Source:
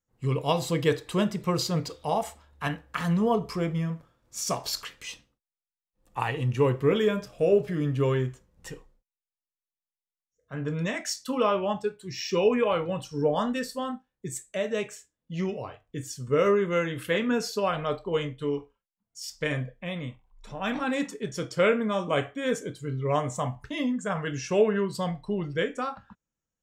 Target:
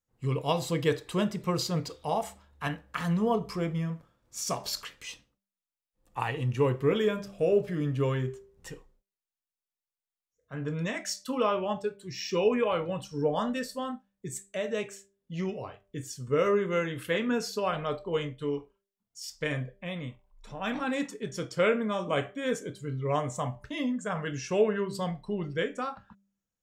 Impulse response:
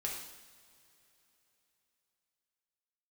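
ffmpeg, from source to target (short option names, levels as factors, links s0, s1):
-af "bandreject=f=197.3:t=h:w=4,bandreject=f=394.6:t=h:w=4,bandreject=f=591.9:t=h:w=4,volume=0.75"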